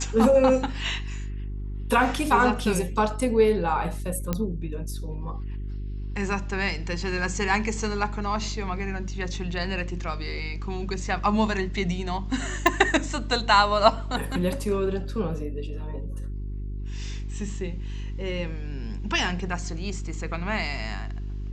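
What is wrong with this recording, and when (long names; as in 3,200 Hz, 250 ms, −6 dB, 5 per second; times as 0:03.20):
mains hum 50 Hz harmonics 8 −32 dBFS
0:04.33: click −11 dBFS
0:12.67: click −6 dBFS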